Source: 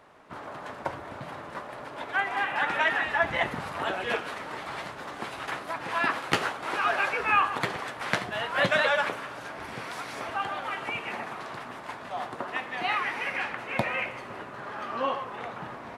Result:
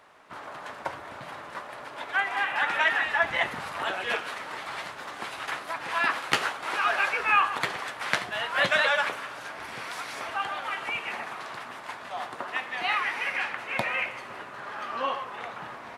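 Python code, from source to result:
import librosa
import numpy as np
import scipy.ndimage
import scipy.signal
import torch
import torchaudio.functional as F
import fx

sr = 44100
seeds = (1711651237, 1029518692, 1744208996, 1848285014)

y = fx.tilt_shelf(x, sr, db=-5.0, hz=630.0)
y = y * 10.0 ** (-2.0 / 20.0)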